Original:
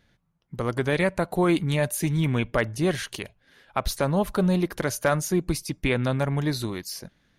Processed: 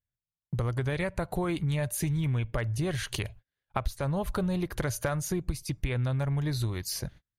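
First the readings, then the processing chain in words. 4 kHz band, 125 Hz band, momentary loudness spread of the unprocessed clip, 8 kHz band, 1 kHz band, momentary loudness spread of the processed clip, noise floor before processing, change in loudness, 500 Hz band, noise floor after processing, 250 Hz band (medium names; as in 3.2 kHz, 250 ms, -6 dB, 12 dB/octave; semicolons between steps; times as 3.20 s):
-5.5 dB, -2.0 dB, 10 LU, -4.0 dB, -7.5 dB, 6 LU, -67 dBFS, -5.5 dB, -8.5 dB, under -85 dBFS, -7.5 dB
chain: resonant low shelf 150 Hz +9.5 dB, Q 1.5; band-stop 5.4 kHz, Q 18; compression 6:1, threshold -31 dBFS, peak gain reduction 19 dB; gate -49 dBFS, range -38 dB; trim +3.5 dB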